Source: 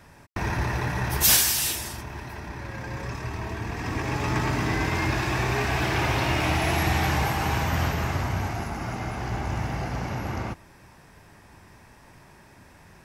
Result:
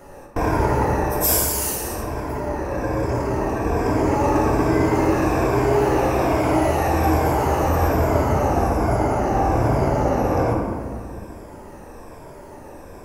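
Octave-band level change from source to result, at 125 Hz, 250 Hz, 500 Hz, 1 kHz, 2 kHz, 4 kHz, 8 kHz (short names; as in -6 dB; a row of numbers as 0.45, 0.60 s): +4.5, +10.0, +13.5, +8.5, -1.5, -6.0, -0.5 dB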